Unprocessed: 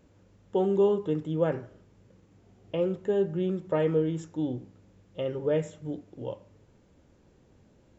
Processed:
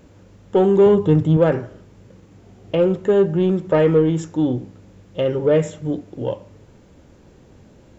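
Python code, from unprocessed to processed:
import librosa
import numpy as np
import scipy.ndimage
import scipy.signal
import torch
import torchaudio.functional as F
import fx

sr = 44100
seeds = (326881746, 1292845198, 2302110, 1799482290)

p1 = fx.peak_eq(x, sr, hz=110.0, db=13.5, octaves=1.2, at=(0.86, 1.37))
p2 = 10.0 ** (-26.0 / 20.0) * np.tanh(p1 / 10.0 ** (-26.0 / 20.0))
p3 = p1 + (p2 * librosa.db_to_amplitude(-3.0))
y = p3 * librosa.db_to_amplitude(7.5)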